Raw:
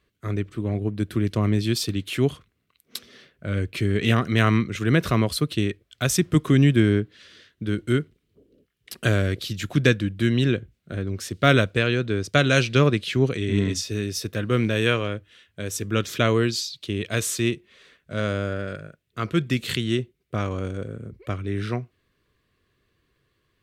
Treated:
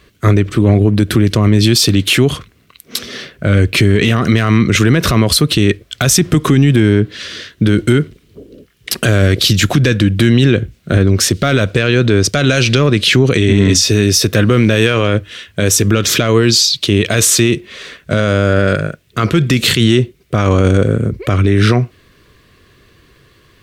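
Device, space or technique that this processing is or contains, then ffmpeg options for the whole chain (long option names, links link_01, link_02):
mastering chain: -af "equalizer=frequency=5700:width_type=o:width=0.77:gain=2.5,acompressor=threshold=-21dB:ratio=2.5,asoftclip=type=tanh:threshold=-9dB,alimiter=level_in=22.5dB:limit=-1dB:release=50:level=0:latency=1,volume=-1dB"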